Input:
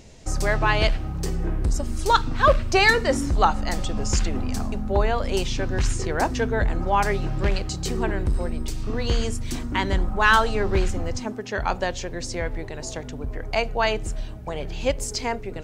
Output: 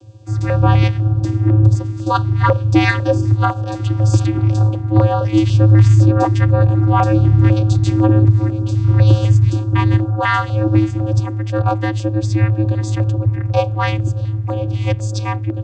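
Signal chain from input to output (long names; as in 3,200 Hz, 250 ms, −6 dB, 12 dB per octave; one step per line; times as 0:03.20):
automatic gain control gain up to 10 dB
channel vocoder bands 16, square 107 Hz
auto-filter notch square 2 Hz 590–2,000 Hz
boost into a limiter +9 dB
level −1 dB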